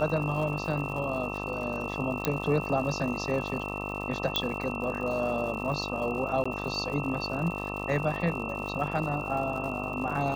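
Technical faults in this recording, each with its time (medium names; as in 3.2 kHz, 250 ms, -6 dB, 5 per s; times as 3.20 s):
buzz 50 Hz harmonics 26 -36 dBFS
crackle 150 per s -37 dBFS
whine 2.7 kHz -37 dBFS
2.25 s: pop -10 dBFS
4.36 s: pop -11 dBFS
6.44–6.46 s: dropout 15 ms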